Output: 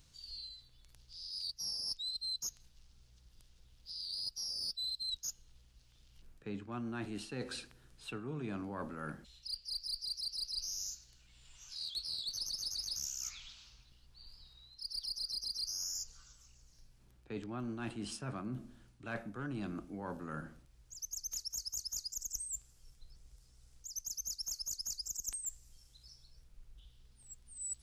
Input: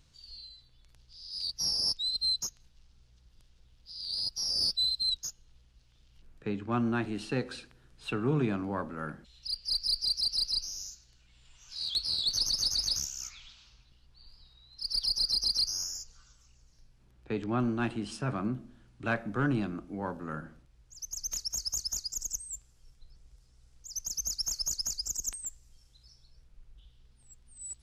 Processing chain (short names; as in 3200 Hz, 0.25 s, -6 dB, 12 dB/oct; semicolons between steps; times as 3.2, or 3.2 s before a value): high shelf 6400 Hz +9.5 dB; reverse; compressor 6:1, threshold -36 dBFS, peak gain reduction 13.5 dB; reverse; gain -2 dB